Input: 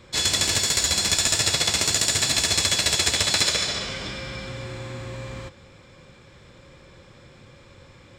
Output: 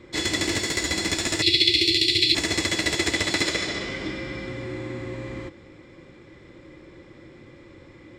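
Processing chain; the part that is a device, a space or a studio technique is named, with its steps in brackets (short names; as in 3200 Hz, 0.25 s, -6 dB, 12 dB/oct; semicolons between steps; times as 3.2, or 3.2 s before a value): 1.42–2.35 EQ curve 120 Hz 0 dB, 230 Hz -20 dB, 350 Hz +5 dB, 520 Hz -16 dB, 910 Hz -28 dB, 1500 Hz -25 dB, 2300 Hz +6 dB, 4300 Hz +13 dB, 6600 Hz -10 dB, 9900 Hz -2 dB; inside a helmet (high shelf 4700 Hz -8.5 dB; small resonant body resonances 320/2000 Hz, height 15 dB, ringing for 40 ms); gain -2 dB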